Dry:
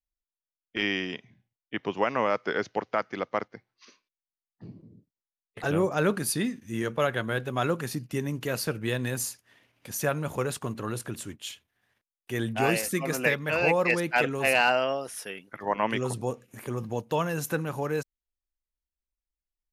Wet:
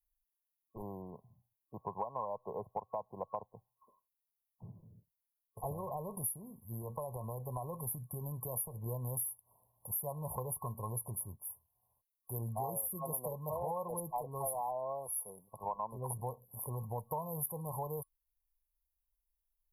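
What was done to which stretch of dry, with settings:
5.72–8.86 s: compression 16:1, threshold -27 dBFS
whole clip: FFT band-reject 1.1–10 kHz; amplifier tone stack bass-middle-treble 10-0-10; compression 6:1, threshold -45 dBFS; trim +10 dB

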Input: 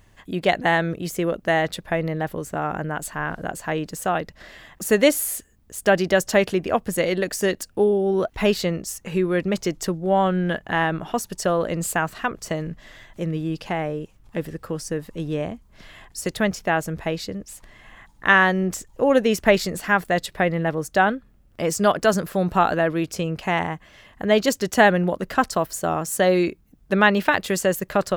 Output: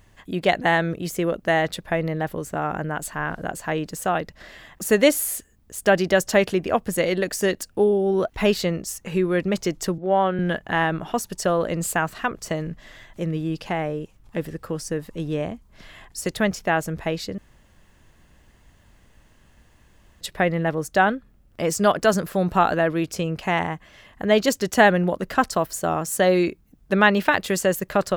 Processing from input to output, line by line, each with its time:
9.98–10.39 s: three-band isolator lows -12 dB, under 210 Hz, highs -19 dB, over 4.2 kHz
17.38–20.21 s: room tone

